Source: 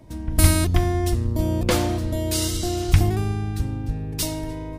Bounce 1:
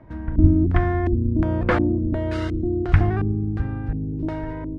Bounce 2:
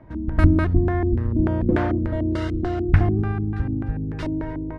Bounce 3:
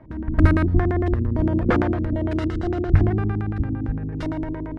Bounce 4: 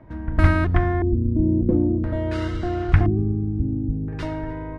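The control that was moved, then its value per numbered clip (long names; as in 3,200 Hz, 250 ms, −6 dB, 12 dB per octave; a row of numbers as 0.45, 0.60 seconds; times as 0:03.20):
auto-filter low-pass, speed: 1.4, 3.4, 8.8, 0.49 Hertz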